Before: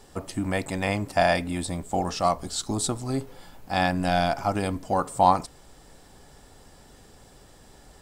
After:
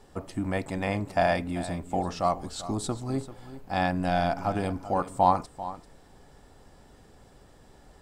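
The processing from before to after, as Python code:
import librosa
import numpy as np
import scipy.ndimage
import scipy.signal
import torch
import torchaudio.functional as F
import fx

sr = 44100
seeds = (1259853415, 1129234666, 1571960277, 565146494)

y = fx.high_shelf(x, sr, hz=3100.0, db=-8.5)
y = y + 10.0 ** (-14.5 / 20.0) * np.pad(y, (int(391 * sr / 1000.0), 0))[:len(y)]
y = F.gain(torch.from_numpy(y), -2.0).numpy()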